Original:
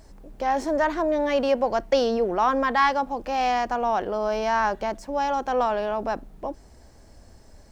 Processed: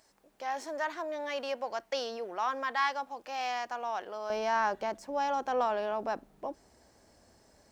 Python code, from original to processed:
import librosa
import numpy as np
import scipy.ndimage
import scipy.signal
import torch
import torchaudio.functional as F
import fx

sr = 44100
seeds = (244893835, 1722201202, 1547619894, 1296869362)

y = fx.highpass(x, sr, hz=fx.steps((0.0, 1300.0), (4.3, 260.0)), slope=6)
y = F.gain(torch.from_numpy(y), -5.5).numpy()